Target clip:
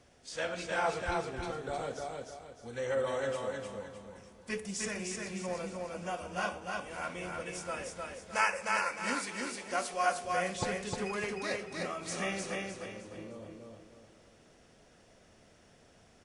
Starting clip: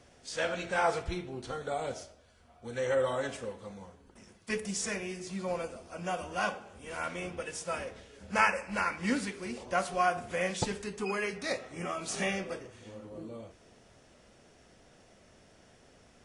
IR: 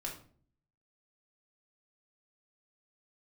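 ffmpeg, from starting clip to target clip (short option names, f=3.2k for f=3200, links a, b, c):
-filter_complex "[0:a]asettb=1/sr,asplit=3[a][b][c];[a]atrim=end=8.084[d];[b]atrim=start=8.08:end=10.25,asetpts=PTS-STARTPTS,afade=t=in:d=0.004:c=qsin,afade=t=out:st=2.166:d=0.004:c=qsin,bass=f=250:g=-12,treble=f=4k:g=6[e];[c]atrim=start=10.246[f];[d][e]acrossfade=d=0.004:c1=hsin:c2=qsin[g];[g][f]acrossfade=d=0.004:c1=qsin:c2=hsin,aecho=1:1:306|612|918|1224|1530:0.708|0.262|0.0969|0.0359|0.0133,volume=-3.5dB"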